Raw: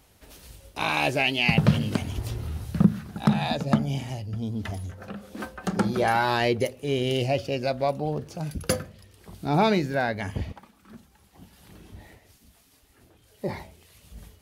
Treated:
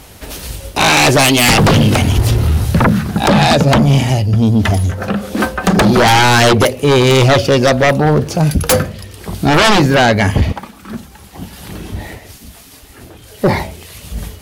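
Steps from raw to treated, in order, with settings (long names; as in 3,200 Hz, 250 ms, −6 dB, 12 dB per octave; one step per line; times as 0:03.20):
sine wavefolder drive 17 dB, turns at −5.5 dBFS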